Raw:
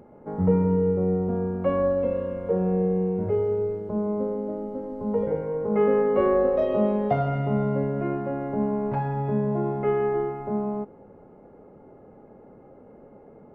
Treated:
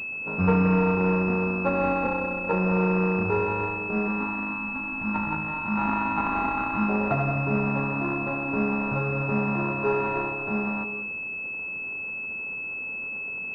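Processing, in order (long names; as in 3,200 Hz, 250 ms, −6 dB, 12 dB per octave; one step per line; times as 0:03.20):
samples sorted by size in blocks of 32 samples
time-frequency box erased 0:04.08–0:06.89, 360–780 Hz
on a send at −10.5 dB: convolution reverb RT60 0.70 s, pre-delay 148 ms
on the sum: switching amplifier with a slow clock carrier 2,600 Hz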